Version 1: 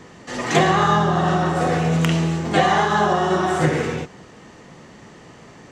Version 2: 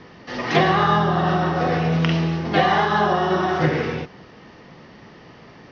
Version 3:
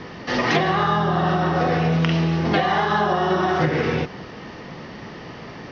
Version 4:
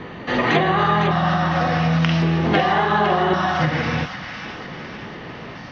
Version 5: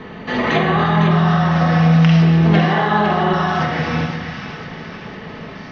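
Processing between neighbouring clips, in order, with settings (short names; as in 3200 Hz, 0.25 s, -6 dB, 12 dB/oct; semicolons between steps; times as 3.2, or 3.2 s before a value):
elliptic low-pass 5400 Hz, stop band 40 dB
compressor, threshold -25 dBFS, peak gain reduction 12.5 dB; gain +8 dB
LFO notch square 0.45 Hz 400–5300 Hz; thin delay 0.505 s, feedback 53%, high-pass 1600 Hz, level -6 dB; gain +2 dB
shoebox room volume 2000 m³, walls mixed, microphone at 1.5 m; gain -1 dB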